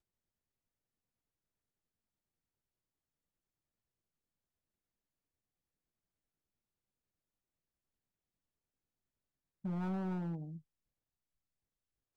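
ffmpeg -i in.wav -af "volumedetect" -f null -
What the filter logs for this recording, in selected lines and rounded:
mean_volume: -49.0 dB
max_volume: -33.9 dB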